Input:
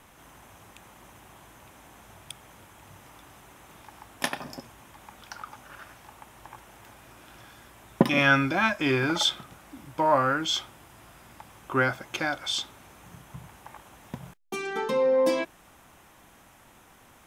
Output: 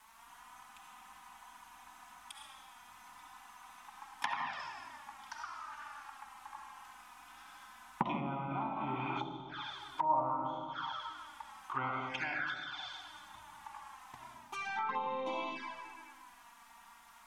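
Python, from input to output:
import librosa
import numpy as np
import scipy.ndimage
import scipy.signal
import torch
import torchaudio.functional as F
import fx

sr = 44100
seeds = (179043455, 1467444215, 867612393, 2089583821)

y = fx.rev_freeverb(x, sr, rt60_s=2.0, hf_ratio=0.75, predelay_ms=25, drr_db=-2.0)
y = fx.dmg_noise_colour(y, sr, seeds[0], colour='white', level_db=-59.0)
y = fx.env_flanger(y, sr, rest_ms=4.9, full_db=-20.5)
y = fx.low_shelf_res(y, sr, hz=690.0, db=-10.0, q=3.0)
y = fx.env_lowpass_down(y, sr, base_hz=680.0, full_db=-22.0)
y = y * librosa.db_to_amplitude(-6.0)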